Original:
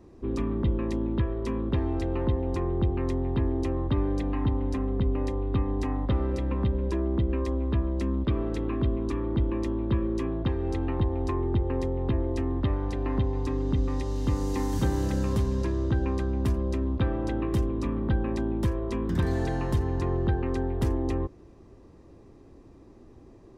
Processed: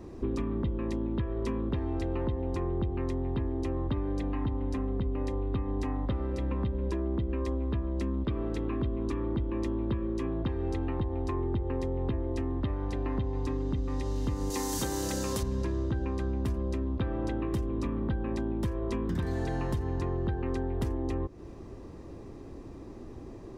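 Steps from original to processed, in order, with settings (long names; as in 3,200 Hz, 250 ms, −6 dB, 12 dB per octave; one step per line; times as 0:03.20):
0:14.50–0:15.43: bass and treble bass −10 dB, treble +11 dB
downward compressor 5 to 1, threshold −36 dBFS, peak gain reduction 14.5 dB
level +7 dB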